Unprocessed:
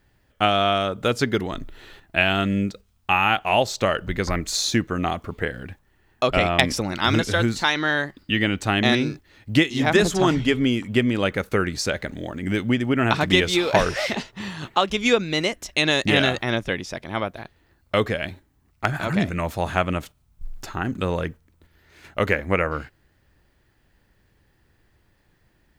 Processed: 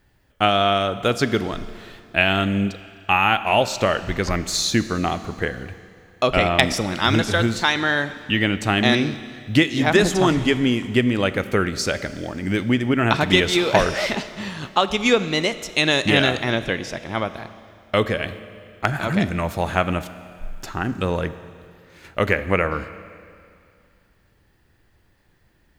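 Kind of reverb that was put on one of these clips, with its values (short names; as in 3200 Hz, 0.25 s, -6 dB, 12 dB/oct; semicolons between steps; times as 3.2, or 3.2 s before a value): Schroeder reverb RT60 2.4 s, combs from 28 ms, DRR 13 dB; gain +1.5 dB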